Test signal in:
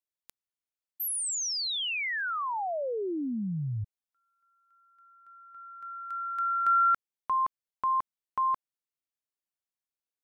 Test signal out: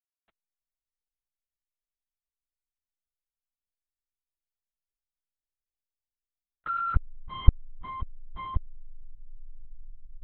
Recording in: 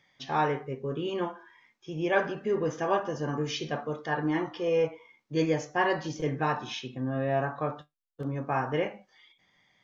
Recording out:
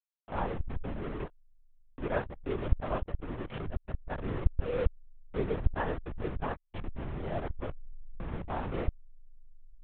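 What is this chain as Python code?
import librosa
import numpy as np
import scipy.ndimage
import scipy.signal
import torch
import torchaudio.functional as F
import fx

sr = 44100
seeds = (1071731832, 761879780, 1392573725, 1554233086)

y = fx.delta_hold(x, sr, step_db=-25.0)
y = fx.air_absorb(y, sr, metres=410.0)
y = fx.lpc_vocoder(y, sr, seeds[0], excitation='whisper', order=10)
y = y * 10.0 ** (-4.0 / 20.0)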